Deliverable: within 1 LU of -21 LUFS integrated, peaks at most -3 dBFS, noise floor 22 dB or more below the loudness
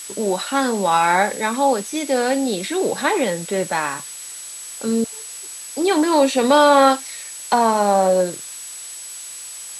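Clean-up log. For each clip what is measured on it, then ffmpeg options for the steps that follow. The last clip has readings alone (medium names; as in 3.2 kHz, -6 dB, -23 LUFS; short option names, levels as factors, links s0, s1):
steady tone 7.9 kHz; tone level -34 dBFS; noise floor -35 dBFS; noise floor target -41 dBFS; loudness -18.5 LUFS; peak level -2.0 dBFS; loudness target -21.0 LUFS
-> -af "bandreject=f=7900:w=30"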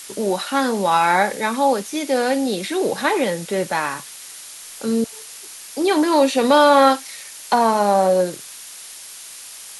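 steady tone not found; noise floor -38 dBFS; noise floor target -41 dBFS
-> -af "afftdn=nr=6:nf=-38"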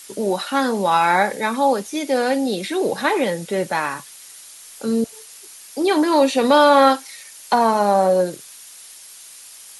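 noise floor -42 dBFS; loudness -18.5 LUFS; peak level -2.5 dBFS; loudness target -21.0 LUFS
-> -af "volume=0.75"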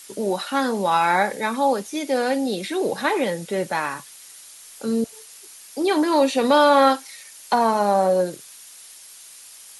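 loudness -21.0 LUFS; peak level -5.0 dBFS; noise floor -44 dBFS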